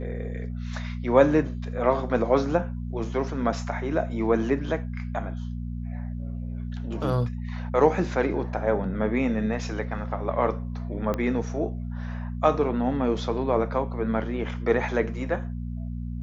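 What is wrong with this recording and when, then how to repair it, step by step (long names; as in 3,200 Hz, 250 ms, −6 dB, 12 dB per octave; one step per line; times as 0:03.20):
mains hum 60 Hz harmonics 4 −32 dBFS
0:11.14: click −15 dBFS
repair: click removal
hum removal 60 Hz, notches 4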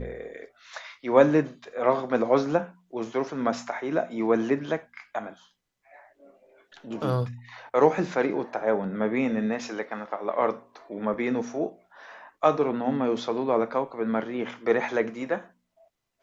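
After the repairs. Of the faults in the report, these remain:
0:11.14: click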